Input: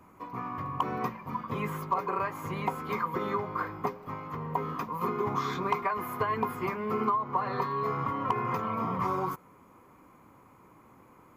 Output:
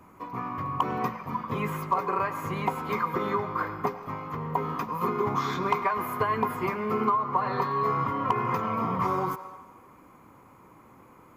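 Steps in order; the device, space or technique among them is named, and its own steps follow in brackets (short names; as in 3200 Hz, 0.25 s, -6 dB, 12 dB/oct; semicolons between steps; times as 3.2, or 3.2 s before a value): filtered reverb send (on a send: HPF 490 Hz 24 dB/oct + LPF 8400 Hz + reverb RT60 1.4 s, pre-delay 87 ms, DRR 11.5 dB); on the sum: gain +3 dB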